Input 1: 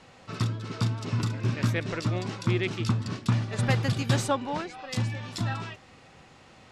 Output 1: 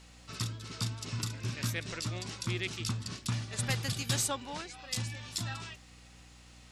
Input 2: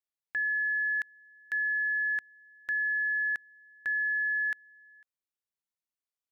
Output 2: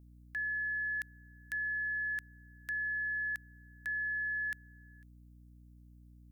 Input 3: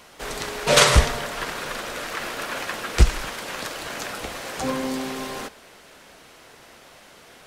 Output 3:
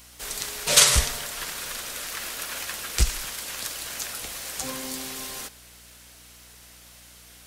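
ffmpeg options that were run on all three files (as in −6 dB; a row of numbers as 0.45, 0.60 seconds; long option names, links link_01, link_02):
-af "lowshelf=frequency=120:gain=6.5,crystalizer=i=7:c=0,aeval=exprs='val(0)+0.00708*(sin(2*PI*60*n/s)+sin(2*PI*2*60*n/s)/2+sin(2*PI*3*60*n/s)/3+sin(2*PI*4*60*n/s)/4+sin(2*PI*5*60*n/s)/5)':channel_layout=same,volume=-12.5dB"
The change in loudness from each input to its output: −6.5, −6.0, −1.0 LU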